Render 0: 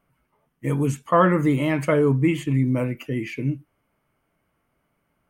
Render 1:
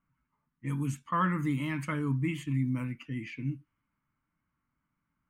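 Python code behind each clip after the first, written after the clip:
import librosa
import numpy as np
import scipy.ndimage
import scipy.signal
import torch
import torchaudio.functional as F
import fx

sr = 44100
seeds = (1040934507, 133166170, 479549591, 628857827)

y = fx.env_lowpass(x, sr, base_hz=2000.0, full_db=-19.5)
y = fx.band_shelf(y, sr, hz=530.0, db=-14.5, octaves=1.3)
y = y * 10.0 ** (-8.5 / 20.0)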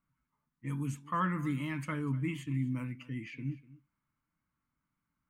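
y = x + 10.0 ** (-19.5 / 20.0) * np.pad(x, (int(247 * sr / 1000.0), 0))[:len(x)]
y = y * 10.0 ** (-3.5 / 20.0)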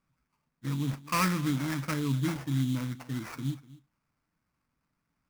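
y = fx.sample_hold(x, sr, seeds[0], rate_hz=3600.0, jitter_pct=20)
y = y * 10.0 ** (4.5 / 20.0)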